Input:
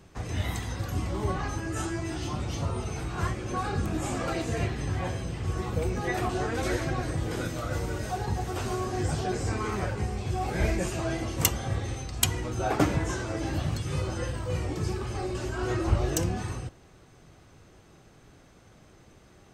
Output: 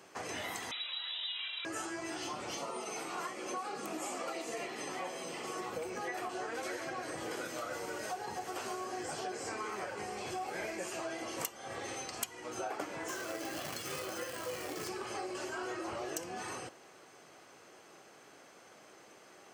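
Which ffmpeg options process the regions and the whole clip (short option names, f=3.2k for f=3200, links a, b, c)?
-filter_complex "[0:a]asettb=1/sr,asplit=3[a][b][c];[a]atrim=end=0.714[d];[b]atrim=start=0.71:end=1.65,asetpts=PTS-STARTPTS,afade=t=in:d=0.004:c=qsin,afade=t=out:st=0.936:d=0.004:c=qsin,highpass=130,lowpass=f=3.4k:t=q:w=0.5098,lowpass=f=3.4k:t=q:w=0.6013,lowpass=f=3.4k:t=q:w=0.9,lowpass=f=3.4k:t=q:w=2.563,afreqshift=-4000[e];[c]atrim=start=1.646[f];[d][e]acrossfade=d=0.004:c1=hsin:c2=qsin[g];[g][f]acrossfade=d=0.004:c1=qsin:c2=hsin,asettb=1/sr,asplit=3[h][i][j];[h]atrim=end=2.574[k];[i]atrim=start=2.57:end=5.61,asetpts=PTS-STARTPTS,afade=t=in:d=0.004:c=qsin,afade=t=out:st=3.036:d=0.004:c=qsin,highpass=f=160:w=0.5412,highpass=f=160:w=1.3066,highshelf=f=10k:g=4.5,bandreject=f=1.6k:w=7.4[l];[j]atrim=start=5.606[m];[k][l]acrossfade=d=0.004:c1=hsin:c2=qsin[n];[n][m]acrossfade=d=0.004:c1=qsin:c2=hsin,asettb=1/sr,asplit=3[o][p][q];[o]atrim=end=13.084[r];[p]atrim=start=13.08:end=14.89,asetpts=PTS-STARTPTS,afade=t=in:d=0.004:c=qsin,afade=t=out:st=1.806:d=0.004:c=qsin,bandreject=f=900:w=6.4,acrusher=bits=3:mode=log:mix=0:aa=0.000001[s];[q]atrim=start=14.886[t];[r][s]acrossfade=d=0.004:c1=hsin:c2=qsin[u];[u][t]acrossfade=d=0.004:c1=qsin:c2=hsin,highpass=430,bandreject=f=3.7k:w=11,acompressor=threshold=-40dB:ratio=6,volume=3dB"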